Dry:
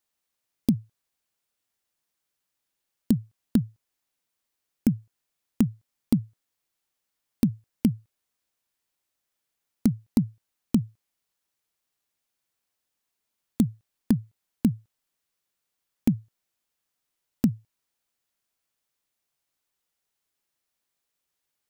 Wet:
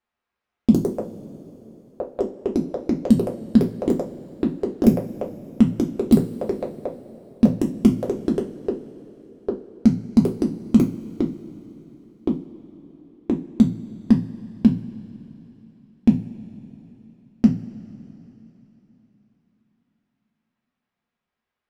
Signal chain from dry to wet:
delay with pitch and tempo change per echo 232 ms, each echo +5 semitones, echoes 3
low-pass that shuts in the quiet parts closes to 2,100 Hz, open at −21.5 dBFS
coupled-rooms reverb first 0.27 s, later 3.8 s, from −22 dB, DRR −0.5 dB
level +3 dB

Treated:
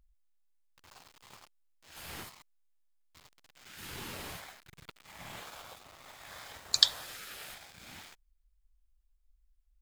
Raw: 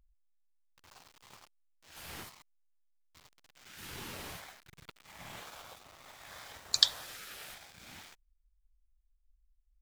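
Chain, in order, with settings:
notch filter 5,800 Hz, Q 27
level +1.5 dB

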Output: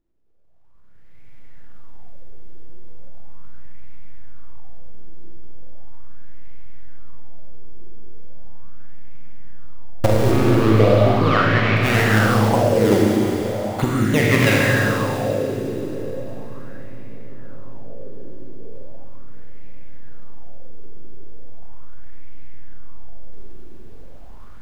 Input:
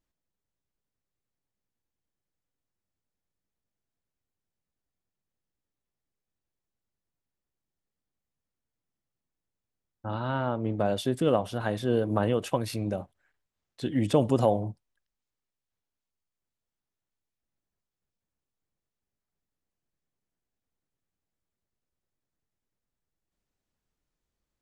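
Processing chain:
camcorder AGC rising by 24 dB per second
spectral tilt −2.5 dB per octave
sample-and-hold swept by an LFO 25×, swing 160% 0.7 Hz
0:10.31–0:11.77: loudspeaker in its box 110–4,500 Hz, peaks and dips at 110 Hz +8 dB, 1,200 Hz +10 dB, 2,400 Hz +4 dB
delay with a low-pass on its return 745 ms, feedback 66%, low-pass 780 Hz, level −16.5 dB
four-comb reverb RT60 3.8 s, combs from 33 ms, DRR −4 dB
auto-filter bell 0.38 Hz 350–2,200 Hz +14 dB
level −3 dB

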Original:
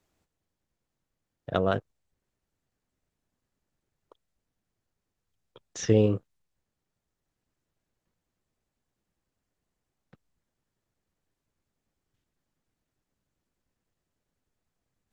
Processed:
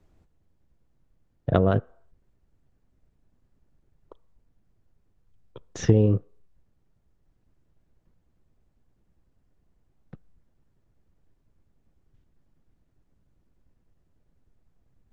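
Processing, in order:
spectral tilt −3 dB per octave
downward compressor 4 to 1, threshold −21 dBFS, peak gain reduction 10.5 dB
on a send: convolution reverb RT60 0.65 s, pre-delay 3 ms, DRR 22 dB
on the sum: level +5.5 dB

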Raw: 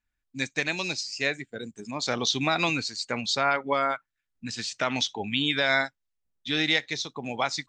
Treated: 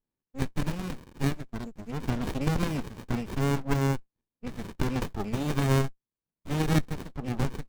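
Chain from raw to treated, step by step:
gap after every zero crossing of 0.11 ms
high-pass filter 150 Hz 24 dB per octave
windowed peak hold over 65 samples
level +2 dB

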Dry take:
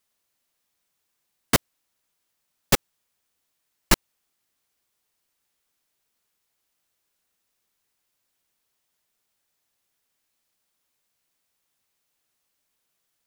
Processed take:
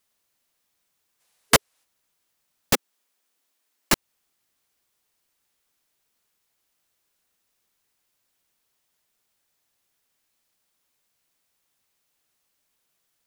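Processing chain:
0:01.20–0:01.84: gain on a spectral selection 420–12,000 Hz +7 dB
0:02.73–0:03.93: Butterworth high-pass 210 Hz
in parallel at 0 dB: downward compressor, threshold −23 dBFS, peak gain reduction 14 dB
on the sum: level −4 dB

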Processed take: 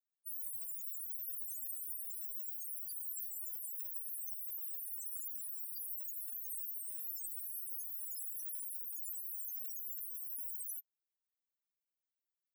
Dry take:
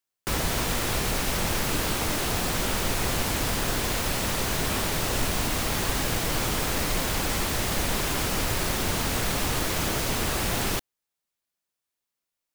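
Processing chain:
first difference
spectral peaks only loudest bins 4
level +6.5 dB

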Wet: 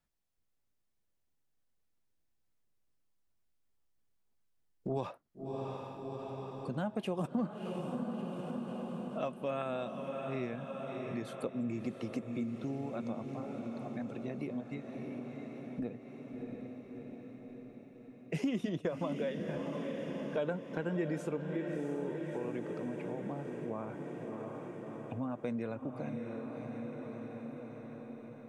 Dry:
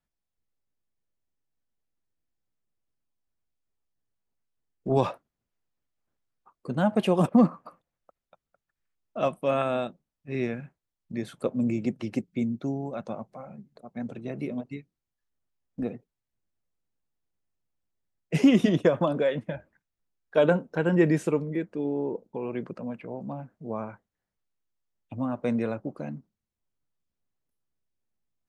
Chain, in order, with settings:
feedback delay with all-pass diffusion 662 ms, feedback 62%, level −9 dB
downward compressor 2.5 to 1, threshold −40 dBFS, peak gain reduction 17 dB
level +1 dB

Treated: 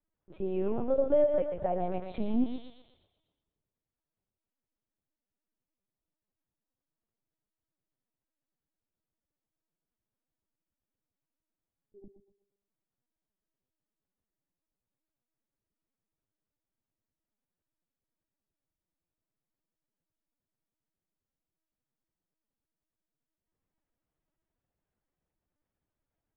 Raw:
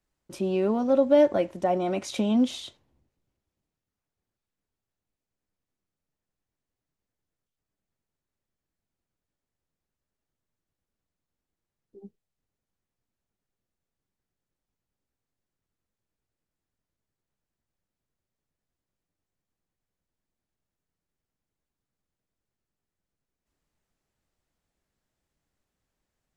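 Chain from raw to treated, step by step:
low-pass filter 1,100 Hz 6 dB per octave
feedback echo with a high-pass in the loop 124 ms, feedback 45%, high-pass 330 Hz, level −5 dB
linear-prediction vocoder at 8 kHz pitch kept
level −5 dB

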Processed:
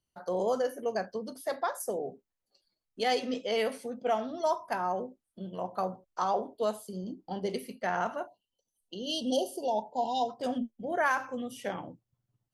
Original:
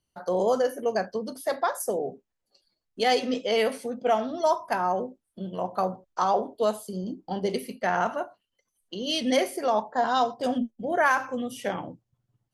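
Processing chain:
time-frequency box erased 0:08.27–0:10.29, 1,000–2,700 Hz
level −5.5 dB

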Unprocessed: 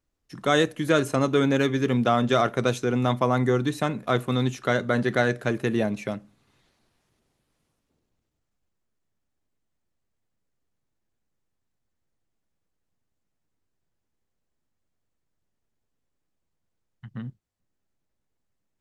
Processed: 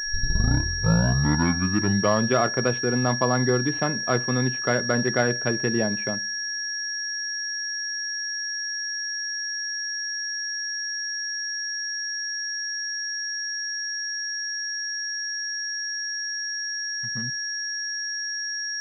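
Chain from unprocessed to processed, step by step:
turntable start at the beginning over 2.37 s
steady tone 1,700 Hz −30 dBFS
switching amplifier with a slow clock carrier 5,600 Hz

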